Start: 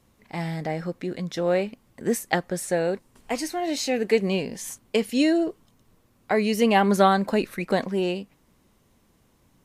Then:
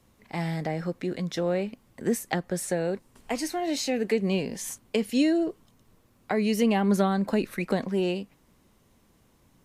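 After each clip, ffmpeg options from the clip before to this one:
ffmpeg -i in.wav -filter_complex "[0:a]acrossover=split=320[link_01][link_02];[link_02]acompressor=threshold=-28dB:ratio=3[link_03];[link_01][link_03]amix=inputs=2:normalize=0" out.wav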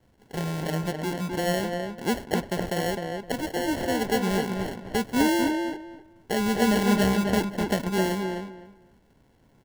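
ffmpeg -i in.wav -filter_complex "[0:a]acrusher=samples=36:mix=1:aa=0.000001,asplit=2[link_01][link_02];[link_02]adelay=257,lowpass=frequency=2500:poles=1,volume=-4dB,asplit=2[link_03][link_04];[link_04]adelay=257,lowpass=frequency=2500:poles=1,volume=0.21,asplit=2[link_05][link_06];[link_06]adelay=257,lowpass=frequency=2500:poles=1,volume=0.21[link_07];[link_01][link_03][link_05][link_07]amix=inputs=4:normalize=0" out.wav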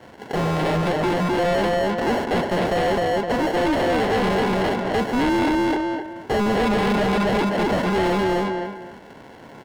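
ffmpeg -i in.wav -filter_complex "[0:a]asplit=2[link_01][link_02];[link_02]highpass=frequency=720:poles=1,volume=32dB,asoftclip=type=tanh:threshold=-10dB[link_03];[link_01][link_03]amix=inputs=2:normalize=0,lowpass=frequency=1700:poles=1,volume=-6dB,asplit=2[link_04][link_05];[link_05]aeval=exprs='0.282*sin(PI/2*2.24*val(0)/0.282)':channel_layout=same,volume=-10dB[link_06];[link_04][link_06]amix=inputs=2:normalize=0,volume=-5.5dB" out.wav

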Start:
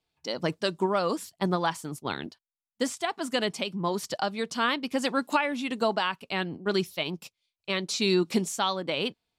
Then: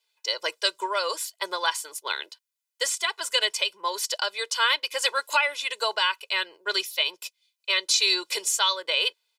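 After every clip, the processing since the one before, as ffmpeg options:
ffmpeg -i in.wav -af "highpass=frequency=400:width=0.5412,highpass=frequency=400:width=1.3066,tiltshelf=frequency=920:gain=-9.5,aecho=1:1:2:0.9,volume=-2dB" out.wav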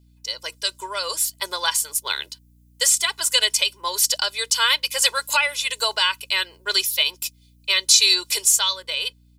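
ffmpeg -i in.wav -af "dynaudnorm=framelen=110:gausssize=17:maxgain=9dB,crystalizer=i=3:c=0,aeval=exprs='val(0)+0.00501*(sin(2*PI*60*n/s)+sin(2*PI*2*60*n/s)/2+sin(2*PI*3*60*n/s)/3+sin(2*PI*4*60*n/s)/4+sin(2*PI*5*60*n/s)/5)':channel_layout=same,volume=-7.5dB" out.wav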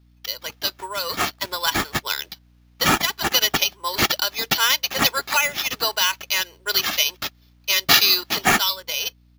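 ffmpeg -i in.wav -af "acrusher=samples=5:mix=1:aa=0.000001" out.wav

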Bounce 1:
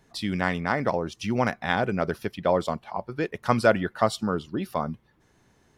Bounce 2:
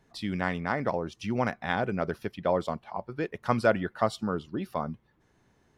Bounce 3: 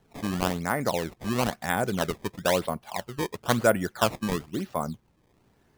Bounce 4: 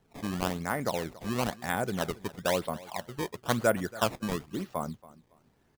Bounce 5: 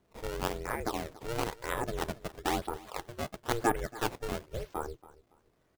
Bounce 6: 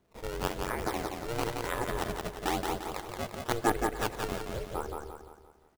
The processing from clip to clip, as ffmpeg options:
ffmpeg -i in.wav -af "highshelf=frequency=4300:gain=-6,volume=-3.5dB" out.wav
ffmpeg -i in.wav -af "acrusher=samples=18:mix=1:aa=0.000001:lfo=1:lforange=28.8:lforate=1,volume=2dB" out.wav
ffmpeg -i in.wav -af "aecho=1:1:280|560:0.106|0.0265,volume=-4dB" out.wav
ffmpeg -i in.wav -af "aeval=exprs='val(0)*sin(2*PI*230*n/s)':channel_layout=same" out.wav
ffmpeg -i in.wav -af "aecho=1:1:174|348|522|696|870|1044:0.631|0.278|0.122|0.0537|0.0236|0.0104" out.wav

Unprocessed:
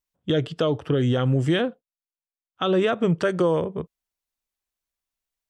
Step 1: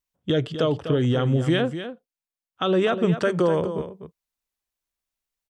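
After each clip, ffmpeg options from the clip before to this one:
ffmpeg -i in.wav -af "aecho=1:1:249:0.299" out.wav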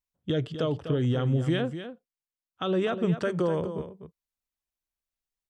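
ffmpeg -i in.wav -af "lowshelf=frequency=200:gain=5.5,volume=-7dB" out.wav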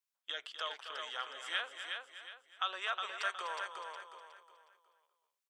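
ffmpeg -i in.wav -filter_complex "[0:a]highpass=frequency=970:width=0.5412,highpass=frequency=970:width=1.3066,asplit=2[link_01][link_02];[link_02]aecho=0:1:364|728|1092|1456:0.562|0.191|0.065|0.0221[link_03];[link_01][link_03]amix=inputs=2:normalize=0" out.wav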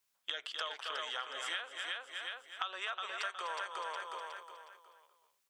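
ffmpeg -i in.wav -af "acompressor=threshold=-47dB:ratio=6,volume=10.5dB" out.wav

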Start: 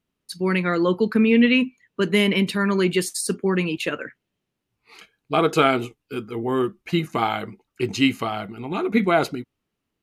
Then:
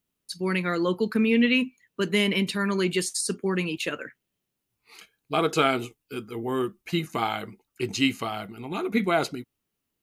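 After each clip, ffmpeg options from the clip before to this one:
ffmpeg -i in.wav -filter_complex "[0:a]aemphasis=mode=production:type=50kf,acrossover=split=8700[link_01][link_02];[link_02]acompressor=threshold=-47dB:ratio=4:attack=1:release=60[link_03];[link_01][link_03]amix=inputs=2:normalize=0,volume=-5dB" out.wav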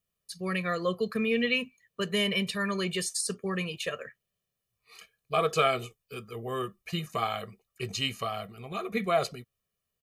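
ffmpeg -i in.wav -af "aecho=1:1:1.7:0.91,volume=-5.5dB" out.wav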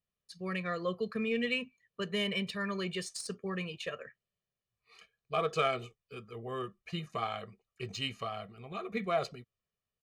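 ffmpeg -i in.wav -af "adynamicsmooth=sensitivity=2.5:basefreq=5900,volume=-5dB" out.wav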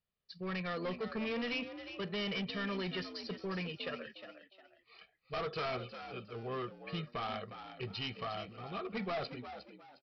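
ffmpeg -i in.wav -filter_complex "[0:a]aresample=11025,asoftclip=type=hard:threshold=-34.5dB,aresample=44100,asplit=4[link_01][link_02][link_03][link_04];[link_02]adelay=358,afreqshift=63,volume=-10.5dB[link_05];[link_03]adelay=716,afreqshift=126,volume=-21dB[link_06];[link_04]adelay=1074,afreqshift=189,volume=-31.4dB[link_07];[link_01][link_05][link_06][link_07]amix=inputs=4:normalize=0" out.wav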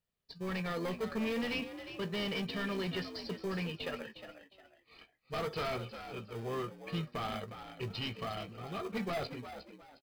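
ffmpeg -i in.wav -filter_complex "[0:a]asplit=2[link_01][link_02];[link_02]acrusher=samples=32:mix=1:aa=0.000001,volume=-9dB[link_03];[link_01][link_03]amix=inputs=2:normalize=0,asplit=2[link_04][link_05];[link_05]adelay=18,volume=-13dB[link_06];[link_04][link_06]amix=inputs=2:normalize=0" out.wav

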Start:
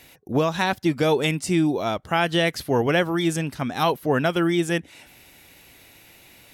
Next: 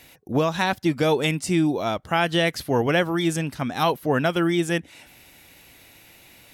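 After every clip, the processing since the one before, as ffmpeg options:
ffmpeg -i in.wav -af "equalizer=frequency=400:width_type=o:width=0.22:gain=-2.5" out.wav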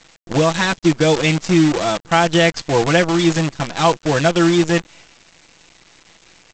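ffmpeg -i in.wav -af "aecho=1:1:6:0.63,aresample=16000,acrusher=bits=5:dc=4:mix=0:aa=0.000001,aresample=44100,volume=3.5dB" out.wav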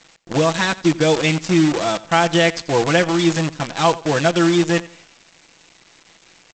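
ffmpeg -i in.wav -af "lowshelf=frequency=60:gain=-11.5,aecho=1:1:87|174|261:0.112|0.0348|0.0108,volume=-1dB" out.wav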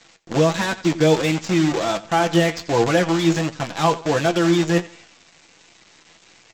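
ffmpeg -i in.wav -filter_complex "[0:a]acrossover=split=510|970[link_01][link_02][link_03];[link_03]asoftclip=type=tanh:threshold=-19.5dB[link_04];[link_01][link_02][link_04]amix=inputs=3:normalize=0,flanger=delay=8.5:depth=4.5:regen=50:speed=1.4:shape=sinusoidal,volume=3dB" out.wav

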